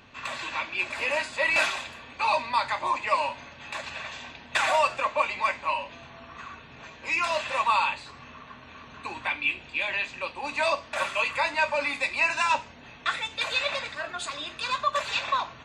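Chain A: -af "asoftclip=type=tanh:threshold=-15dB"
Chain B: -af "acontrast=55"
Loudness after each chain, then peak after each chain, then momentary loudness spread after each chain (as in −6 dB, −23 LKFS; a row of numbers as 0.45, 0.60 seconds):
−28.0, −21.0 LKFS; −15.5, −5.5 dBFS; 17, 18 LU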